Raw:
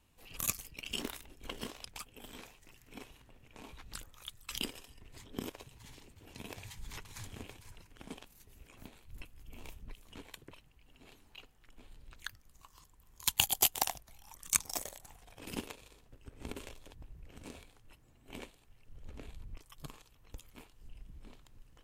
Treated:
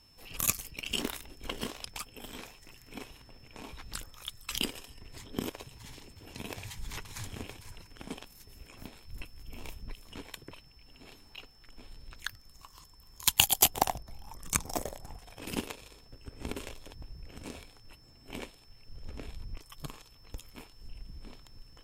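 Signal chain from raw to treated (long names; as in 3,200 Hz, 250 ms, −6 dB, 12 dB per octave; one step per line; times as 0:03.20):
0:13.65–0:15.19: tilt shelving filter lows +7.5 dB, about 1,200 Hz
steady tone 5,300 Hz −66 dBFS
level +5.5 dB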